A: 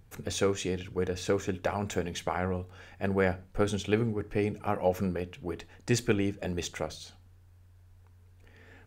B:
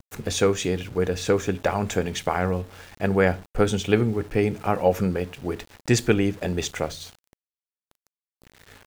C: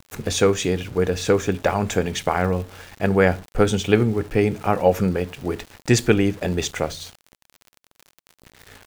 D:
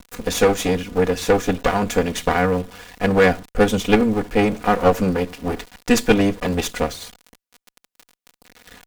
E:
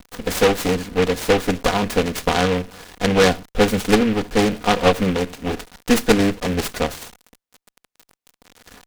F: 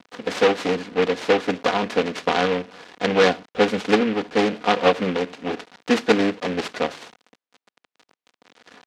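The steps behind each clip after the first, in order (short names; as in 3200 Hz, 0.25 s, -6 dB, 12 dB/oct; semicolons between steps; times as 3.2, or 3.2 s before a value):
sample gate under -49 dBFS; gain +7 dB
crackle 56/s -34 dBFS; gain +3 dB
minimum comb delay 4.1 ms; gain +2 dB
noise-modulated delay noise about 1900 Hz, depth 0.092 ms
BPF 230–4300 Hz; gain -1 dB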